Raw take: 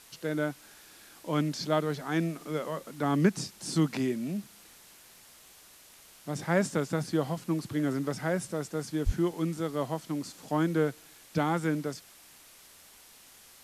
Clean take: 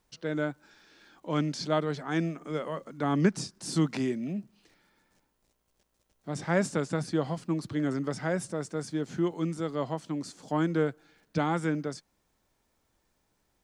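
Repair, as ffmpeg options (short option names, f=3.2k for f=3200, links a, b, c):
-filter_complex "[0:a]asplit=3[a][b][c];[a]afade=t=out:st=9.05:d=0.02[d];[b]highpass=f=140:w=0.5412,highpass=f=140:w=1.3066,afade=t=in:st=9.05:d=0.02,afade=t=out:st=9.17:d=0.02[e];[c]afade=t=in:st=9.17:d=0.02[f];[d][e][f]amix=inputs=3:normalize=0,afwtdn=0.0022"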